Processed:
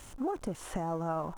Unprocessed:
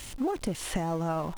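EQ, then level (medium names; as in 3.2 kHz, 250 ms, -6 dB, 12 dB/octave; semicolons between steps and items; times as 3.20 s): bass shelf 490 Hz -6 dB; high-order bell 3 kHz -8.5 dB; treble shelf 4.5 kHz -11 dB; 0.0 dB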